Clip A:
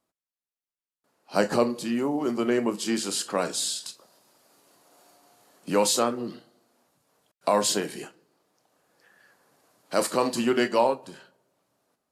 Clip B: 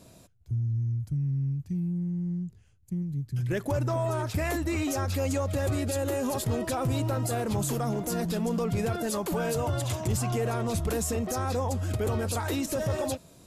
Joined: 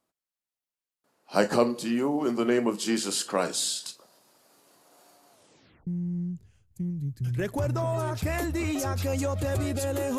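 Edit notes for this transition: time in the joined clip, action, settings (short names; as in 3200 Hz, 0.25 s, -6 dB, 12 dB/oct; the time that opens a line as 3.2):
clip A
5.31 tape stop 0.56 s
5.87 switch to clip B from 1.99 s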